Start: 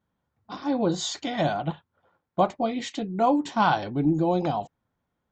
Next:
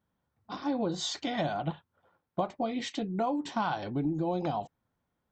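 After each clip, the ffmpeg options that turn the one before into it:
ffmpeg -i in.wav -af "bandreject=frequency=6900:width=12,acompressor=threshold=-25dB:ratio=6,volume=-2dB" out.wav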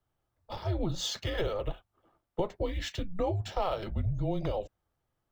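ffmpeg -i in.wav -filter_complex "[0:a]afreqshift=-190,acrossover=split=110|2200[link_01][link_02][link_03];[link_03]acrusher=bits=4:mode=log:mix=0:aa=0.000001[link_04];[link_01][link_02][link_04]amix=inputs=3:normalize=0" out.wav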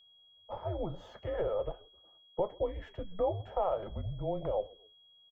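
ffmpeg -i in.wav -filter_complex "[0:a]firequalizer=gain_entry='entry(320,0);entry(530,10);entry(3900,-25)':delay=0.05:min_phase=1,asplit=3[link_01][link_02][link_03];[link_02]adelay=130,afreqshift=-46,volume=-24dB[link_04];[link_03]adelay=260,afreqshift=-92,volume=-32.4dB[link_05];[link_01][link_04][link_05]amix=inputs=3:normalize=0,aeval=exprs='val(0)+0.00251*sin(2*PI*3300*n/s)':channel_layout=same,volume=-7.5dB" out.wav

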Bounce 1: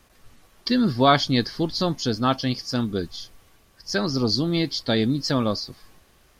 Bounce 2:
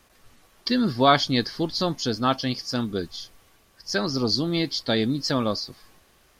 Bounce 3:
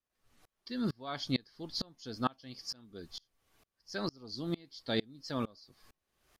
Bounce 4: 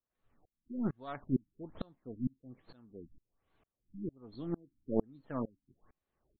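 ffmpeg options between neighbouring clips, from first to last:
ffmpeg -i in.wav -af "lowshelf=frequency=210:gain=-5" out.wav
ffmpeg -i in.wav -af "aeval=exprs='val(0)*pow(10,-31*if(lt(mod(-2.2*n/s,1),2*abs(-2.2)/1000),1-mod(-2.2*n/s,1)/(2*abs(-2.2)/1000),(mod(-2.2*n/s,1)-2*abs(-2.2)/1000)/(1-2*abs(-2.2)/1000))/20)':channel_layout=same,volume=-5.5dB" out.wav
ffmpeg -i in.wav -af "aeval=exprs='0.15*(cos(1*acos(clip(val(0)/0.15,-1,1)))-cos(1*PI/2))+0.0237*(cos(2*acos(clip(val(0)/0.15,-1,1)))-cos(2*PI/2))+0.0376*(cos(3*acos(clip(val(0)/0.15,-1,1)))-cos(3*PI/2))+0.000841*(cos(6*acos(clip(val(0)/0.15,-1,1)))-cos(6*PI/2))':channel_layout=same,highshelf=frequency=2300:gain=-10,afftfilt=real='re*lt(b*sr/1024,300*pow(4500/300,0.5+0.5*sin(2*PI*1.2*pts/sr)))':imag='im*lt(b*sr/1024,300*pow(4500/300,0.5+0.5*sin(2*PI*1.2*pts/sr)))':win_size=1024:overlap=0.75,volume=10dB" out.wav

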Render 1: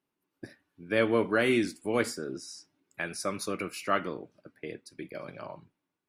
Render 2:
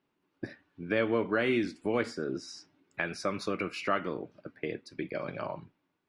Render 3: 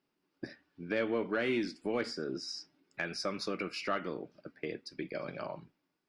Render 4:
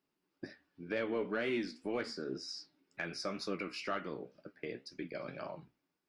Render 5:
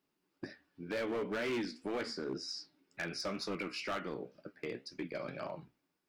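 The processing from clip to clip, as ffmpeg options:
ffmpeg -i in.wav -af "acompressor=threshold=-38dB:ratio=2,lowpass=4000,volume=6.5dB" out.wav
ffmpeg -i in.wav -af "equalizer=frequency=100:width_type=o:width=0.33:gain=-11,equalizer=frequency=1000:width_type=o:width=0.33:gain=-3,equalizer=frequency=5000:width_type=o:width=0.33:gain=10,asoftclip=type=tanh:threshold=-17dB,volume=-3dB" out.wav
ffmpeg -i in.wav -af "flanger=delay=9.5:depth=7.8:regen=61:speed=2:shape=triangular,volume=1dB" out.wav
ffmpeg -i in.wav -af "volume=34dB,asoftclip=hard,volume=-34dB,volume=2dB" out.wav

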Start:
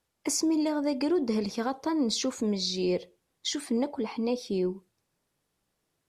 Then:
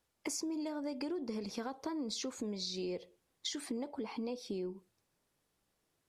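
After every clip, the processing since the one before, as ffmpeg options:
ffmpeg -i in.wav -af "equalizer=frequency=150:width_type=o:width=0.77:gain=-2.5,acompressor=threshold=-35dB:ratio=6,volume=-1.5dB" out.wav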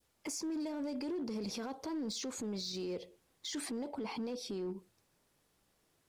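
ffmpeg -i in.wav -af "adynamicequalizer=threshold=0.00224:dfrequency=1300:dqfactor=0.75:tfrequency=1300:tqfactor=0.75:attack=5:release=100:ratio=0.375:range=2:mode=cutabove:tftype=bell,alimiter=level_in=13.5dB:limit=-24dB:level=0:latency=1:release=13,volume=-13.5dB,asoftclip=type=hard:threshold=-39.5dB,volume=5.5dB" out.wav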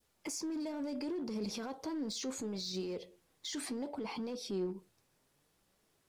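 ffmpeg -i in.wav -af "flanger=delay=4.5:depth=3.6:regen=77:speed=0.68:shape=triangular,volume=4.5dB" out.wav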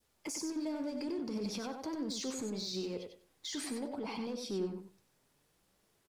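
ffmpeg -i in.wav -af "aecho=1:1:95|190|285:0.473|0.071|0.0106" out.wav

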